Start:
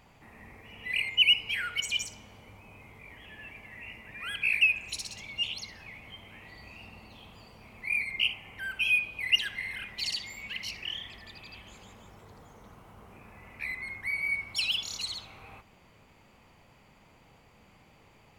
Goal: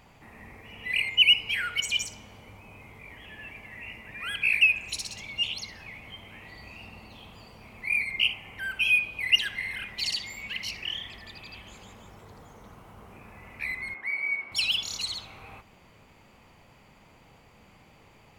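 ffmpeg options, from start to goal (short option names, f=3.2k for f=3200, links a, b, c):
-filter_complex "[0:a]asettb=1/sr,asplit=3[a][b][c];[a]atrim=end=13.944[d];[b]atrim=start=13.94:end=14.52,asetpts=PTS-STARTPTS,afade=t=in:d=0.004:c=qsin,afade=t=out:st=0.576:d=0.004:c=qsin,acrossover=split=230 3000:gain=0.0891 1 0.2[e][f][g];[e][f][g]amix=inputs=3:normalize=0[h];[c]atrim=start=14.516[i];[d][h]acrossfade=d=0.004:c1=hsin:c2=qsin[j];[j][i]acrossfade=d=0.004:c1=qsin:c2=hsin,volume=3dB"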